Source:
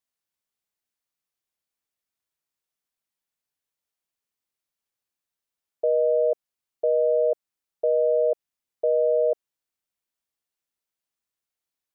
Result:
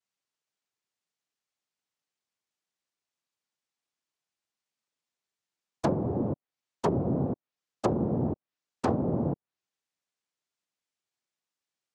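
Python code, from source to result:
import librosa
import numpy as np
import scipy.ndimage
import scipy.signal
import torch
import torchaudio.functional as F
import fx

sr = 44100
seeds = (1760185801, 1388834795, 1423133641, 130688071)

y = 10.0 ** (-16.0 / 20.0) * np.tanh(x / 10.0 ** (-16.0 / 20.0))
y = fx.noise_vocoder(y, sr, seeds[0], bands=2)
y = fx.env_lowpass_down(y, sr, base_hz=310.0, full_db=-19.5)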